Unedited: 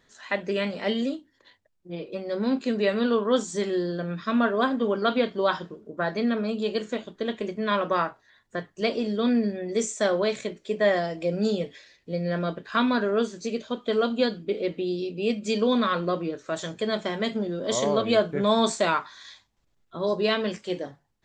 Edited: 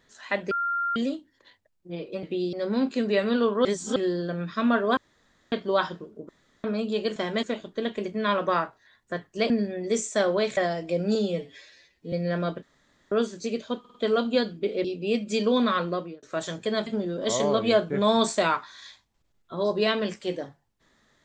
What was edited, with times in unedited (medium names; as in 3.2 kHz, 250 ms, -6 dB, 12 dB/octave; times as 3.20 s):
0.51–0.96 s: bleep 1.39 kHz -24 dBFS
3.35–3.66 s: reverse
4.67–5.22 s: room tone
5.99–6.34 s: room tone
8.93–9.35 s: delete
10.42–10.90 s: delete
11.48–12.13 s: stretch 1.5×
12.63–13.12 s: room tone
13.80 s: stutter 0.05 s, 4 plays
14.70–15.00 s: move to 2.23 s
15.85–16.38 s: fade out equal-power
17.02–17.29 s: move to 6.86 s